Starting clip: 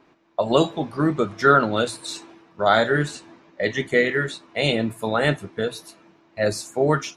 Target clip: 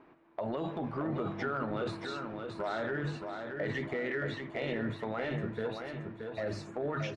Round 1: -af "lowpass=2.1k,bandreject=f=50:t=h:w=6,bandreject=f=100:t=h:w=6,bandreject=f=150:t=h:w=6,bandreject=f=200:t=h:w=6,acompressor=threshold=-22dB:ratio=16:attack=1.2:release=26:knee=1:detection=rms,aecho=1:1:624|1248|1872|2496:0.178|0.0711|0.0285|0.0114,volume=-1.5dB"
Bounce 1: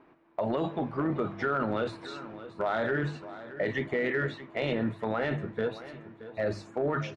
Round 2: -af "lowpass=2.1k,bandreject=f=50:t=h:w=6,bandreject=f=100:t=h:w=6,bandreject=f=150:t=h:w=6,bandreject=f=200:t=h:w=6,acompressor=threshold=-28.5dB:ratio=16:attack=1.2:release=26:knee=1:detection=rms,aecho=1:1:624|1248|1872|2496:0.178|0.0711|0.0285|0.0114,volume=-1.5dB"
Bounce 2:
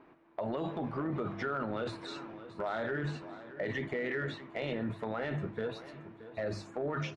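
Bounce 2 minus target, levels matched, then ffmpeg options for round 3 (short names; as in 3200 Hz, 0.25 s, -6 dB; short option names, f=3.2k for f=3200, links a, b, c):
echo-to-direct -9 dB
-af "lowpass=2.1k,bandreject=f=50:t=h:w=6,bandreject=f=100:t=h:w=6,bandreject=f=150:t=h:w=6,bandreject=f=200:t=h:w=6,acompressor=threshold=-28.5dB:ratio=16:attack=1.2:release=26:knee=1:detection=rms,aecho=1:1:624|1248|1872|2496|3120:0.501|0.2|0.0802|0.0321|0.0128,volume=-1.5dB"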